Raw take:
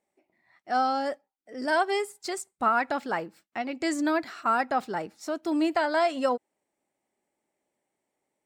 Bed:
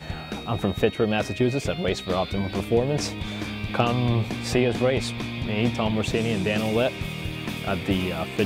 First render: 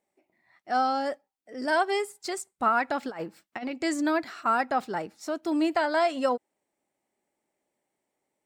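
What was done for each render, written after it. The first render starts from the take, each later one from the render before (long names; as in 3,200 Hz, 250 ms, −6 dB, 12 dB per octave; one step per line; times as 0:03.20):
0:03.03–0:03.71: compressor whose output falls as the input rises −33 dBFS, ratio −0.5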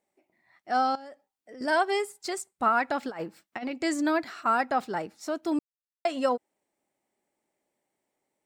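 0:00.95–0:01.61: downward compressor 10 to 1, threshold −41 dBFS
0:05.59–0:06.05: silence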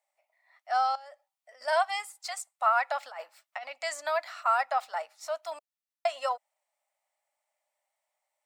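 elliptic high-pass filter 600 Hz, stop band 40 dB
notch filter 1,600 Hz, Q 12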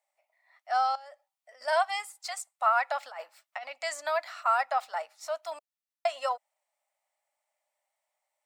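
no processing that can be heard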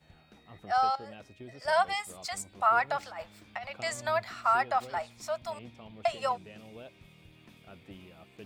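mix in bed −25 dB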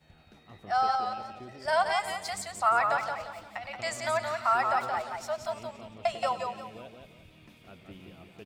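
single-tap delay 98 ms −16.5 dB
feedback echo with a swinging delay time 175 ms, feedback 35%, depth 83 cents, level −5 dB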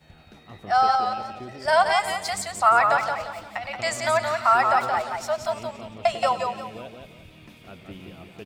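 level +7 dB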